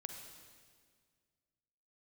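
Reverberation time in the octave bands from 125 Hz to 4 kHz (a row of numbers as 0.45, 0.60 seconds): 2.3, 2.1, 2.0, 1.7, 1.7, 1.7 seconds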